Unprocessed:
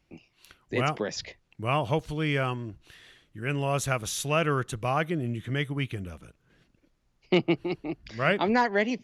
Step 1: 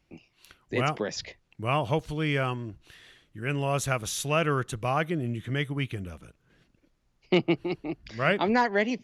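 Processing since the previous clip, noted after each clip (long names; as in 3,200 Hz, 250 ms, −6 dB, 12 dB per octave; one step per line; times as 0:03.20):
no processing that can be heard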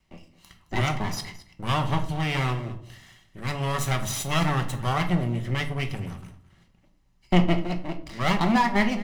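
lower of the sound and its delayed copy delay 1 ms
single-tap delay 217 ms −18 dB
rectangular room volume 460 cubic metres, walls furnished, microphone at 1.1 metres
level +2 dB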